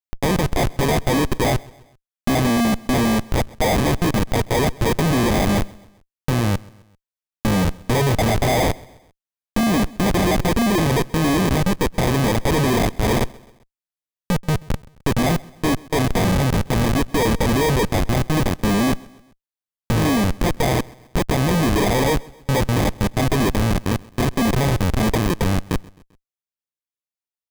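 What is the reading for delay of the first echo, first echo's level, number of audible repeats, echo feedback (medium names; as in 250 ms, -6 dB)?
131 ms, -23.5 dB, 2, 49%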